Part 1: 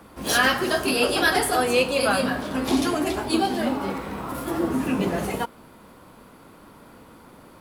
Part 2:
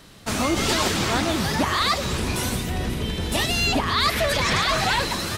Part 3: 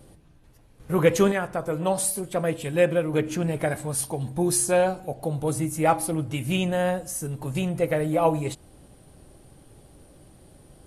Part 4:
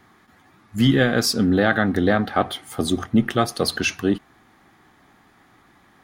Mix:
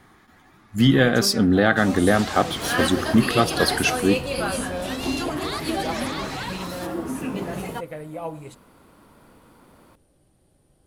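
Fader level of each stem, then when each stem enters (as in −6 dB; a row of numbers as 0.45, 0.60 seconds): −5.0, −11.0, −11.0, +0.5 decibels; 2.35, 1.50, 0.00, 0.00 seconds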